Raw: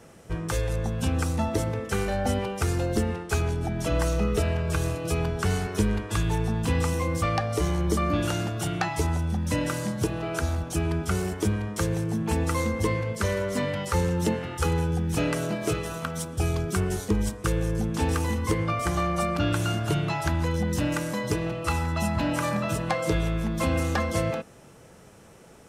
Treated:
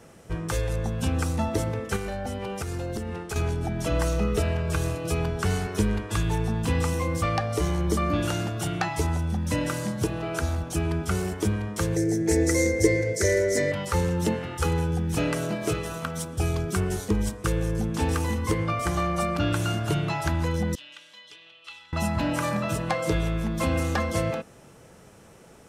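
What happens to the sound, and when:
0:01.96–0:03.36: downward compressor 10 to 1, threshold −27 dBFS
0:11.96–0:13.72: drawn EQ curve 150 Hz 0 dB, 220 Hz −9 dB, 340 Hz +11 dB, 640 Hz +3 dB, 1,100 Hz −16 dB, 2,000 Hz +9 dB, 2,800 Hz −11 dB, 6,100 Hz +12 dB, 12,000 Hz +3 dB
0:20.75–0:21.93: resonant band-pass 3,300 Hz, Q 4.8

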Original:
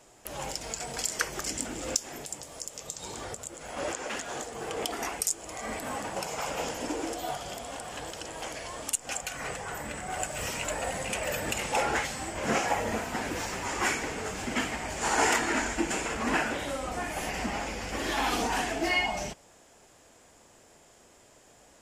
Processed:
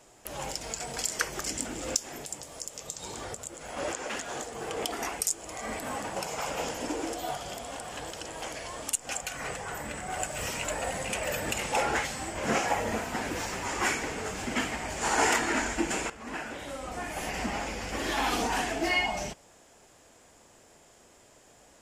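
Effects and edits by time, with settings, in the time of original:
0:16.10–0:17.41: fade in, from −15.5 dB

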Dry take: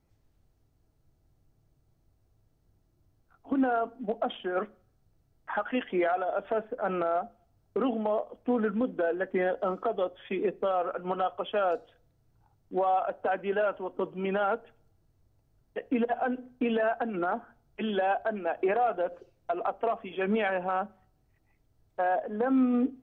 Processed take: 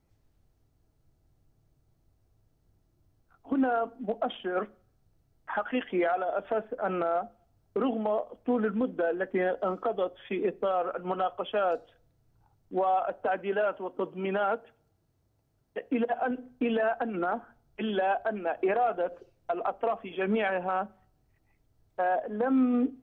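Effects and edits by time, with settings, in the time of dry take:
0:13.42–0:16.31: high-pass filter 110 Hz 6 dB per octave

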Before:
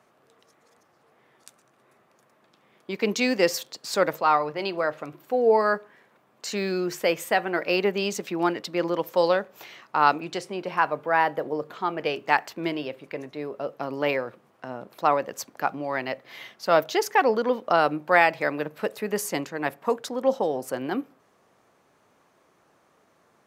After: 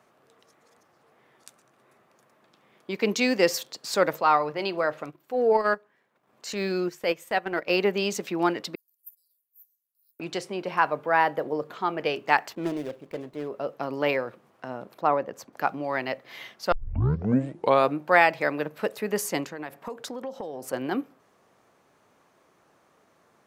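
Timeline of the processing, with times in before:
0:05.04–0:07.70: transient designer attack −6 dB, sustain −12 dB
0:08.75–0:10.20: inverse Chebyshev high-pass filter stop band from 2,500 Hz, stop band 80 dB
0:12.55–0:13.48: running median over 25 samples
0:14.94–0:15.53: high-shelf EQ 2,200 Hz −12 dB
0:16.72: tape start 1.25 s
0:19.48–0:20.73: downward compressor 8 to 1, threshold −31 dBFS

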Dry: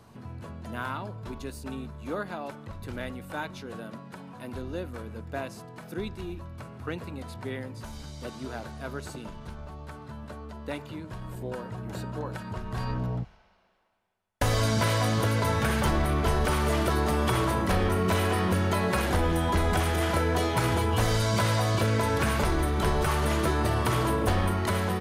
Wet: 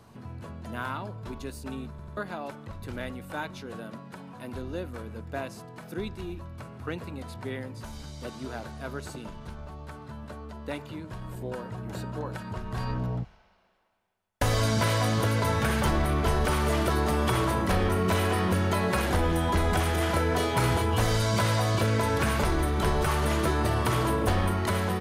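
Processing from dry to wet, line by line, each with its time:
0:01.90: stutter in place 0.09 s, 3 plays
0:20.28–0:20.82: flutter between parallel walls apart 5.4 metres, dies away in 0.25 s

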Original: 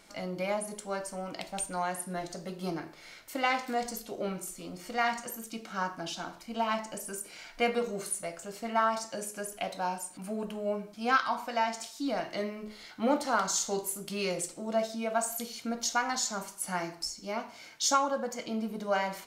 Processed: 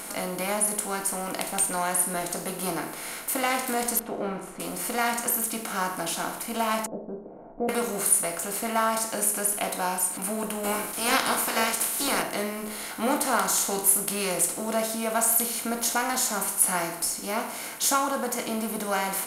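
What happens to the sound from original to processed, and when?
0:03.99–0:04.60: low-pass filter 1,300 Hz
0:06.86–0:07.69: Butterworth low-pass 640 Hz
0:10.63–0:12.21: ceiling on every frequency bin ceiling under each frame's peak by 22 dB
whole clip: compressor on every frequency bin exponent 0.6; high shelf with overshoot 7,900 Hz +11 dB, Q 1.5; notch filter 580 Hz, Q 12

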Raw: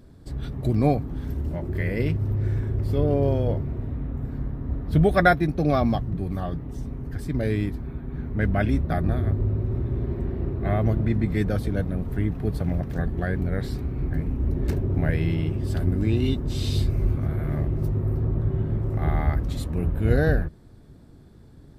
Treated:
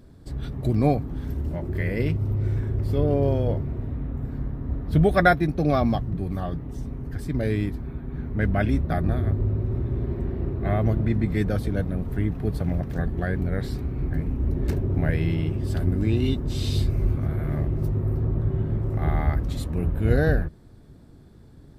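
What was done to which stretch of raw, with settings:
0:02.11–0:02.57: notch filter 1,700 Hz, Q 7.7

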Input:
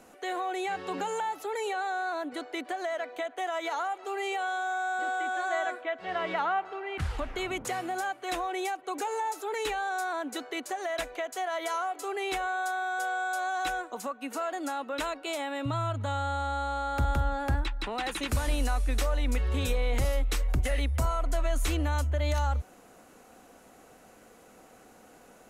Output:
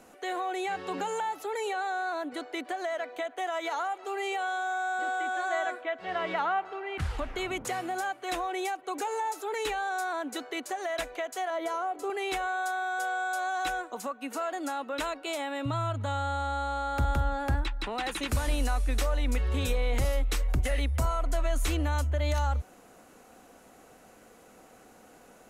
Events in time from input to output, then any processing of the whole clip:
0:11.50–0:12.10: tilt shelving filter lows +7 dB, about 840 Hz

